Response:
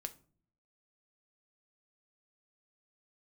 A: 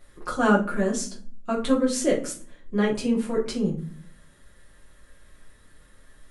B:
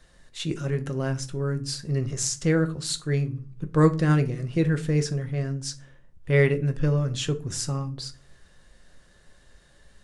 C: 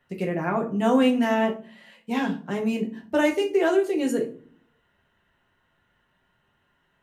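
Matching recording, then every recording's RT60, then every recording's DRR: B; 0.45 s, no single decay rate, 0.45 s; -5.0 dB, 8.0 dB, 1.0 dB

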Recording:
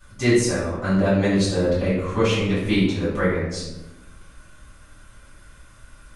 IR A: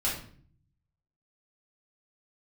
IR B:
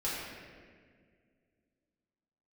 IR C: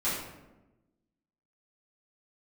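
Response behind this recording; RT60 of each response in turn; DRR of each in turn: C; 0.50 s, 1.9 s, 1.1 s; -8.0 dB, -9.0 dB, -12.0 dB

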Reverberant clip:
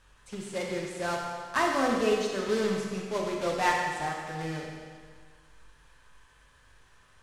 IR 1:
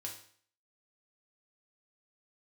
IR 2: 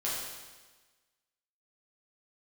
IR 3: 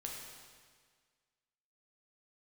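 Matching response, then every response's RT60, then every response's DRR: 3; 0.55 s, 1.3 s, 1.7 s; -0.5 dB, -7.5 dB, -1.5 dB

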